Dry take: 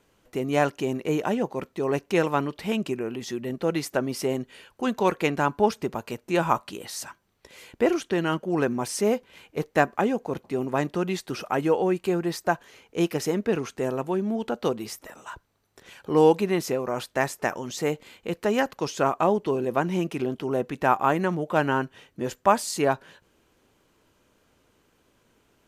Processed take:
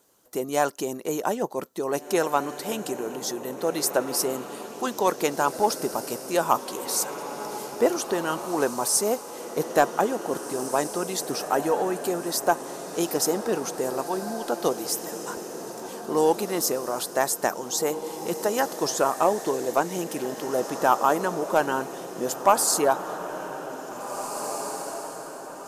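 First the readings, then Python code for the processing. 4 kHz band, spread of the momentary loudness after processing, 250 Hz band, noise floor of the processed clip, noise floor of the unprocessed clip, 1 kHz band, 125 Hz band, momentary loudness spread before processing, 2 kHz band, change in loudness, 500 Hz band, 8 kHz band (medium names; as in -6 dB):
+3.5 dB, 11 LU, -3.5 dB, -39 dBFS, -67 dBFS, +2.0 dB, -8.5 dB, 11 LU, -1.5 dB, 0.0 dB, 0.0 dB, +10.5 dB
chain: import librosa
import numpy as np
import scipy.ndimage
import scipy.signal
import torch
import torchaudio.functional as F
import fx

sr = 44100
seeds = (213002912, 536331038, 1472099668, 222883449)

p1 = fx.highpass(x, sr, hz=460.0, slope=6)
p2 = fx.high_shelf(p1, sr, hz=5500.0, db=10.0)
p3 = fx.hpss(p2, sr, part='percussive', gain_db=6)
p4 = fx.peak_eq(p3, sr, hz=2400.0, db=-12.5, octaves=1.2)
p5 = 10.0 ** (-5.0 / 20.0) * np.tanh(p4 / 10.0 ** (-5.0 / 20.0))
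y = p5 + fx.echo_diffused(p5, sr, ms=1927, feedback_pct=49, wet_db=-9.5, dry=0)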